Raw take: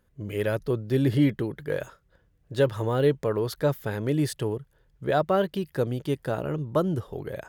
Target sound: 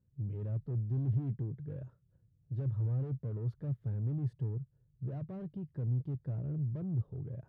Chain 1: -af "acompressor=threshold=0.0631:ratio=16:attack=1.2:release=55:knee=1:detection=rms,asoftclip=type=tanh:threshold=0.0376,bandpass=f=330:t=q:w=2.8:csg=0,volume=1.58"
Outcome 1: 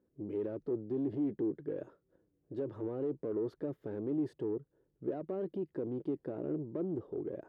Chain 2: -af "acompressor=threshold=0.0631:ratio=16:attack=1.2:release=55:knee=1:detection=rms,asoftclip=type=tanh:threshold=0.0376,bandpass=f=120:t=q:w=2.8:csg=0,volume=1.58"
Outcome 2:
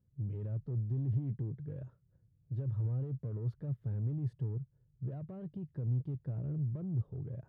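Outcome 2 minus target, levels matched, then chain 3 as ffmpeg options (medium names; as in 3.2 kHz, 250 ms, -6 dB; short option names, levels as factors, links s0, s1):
compression: peak gain reduction +10.5 dB
-af "asoftclip=type=tanh:threshold=0.0376,bandpass=f=120:t=q:w=2.8:csg=0,volume=1.58"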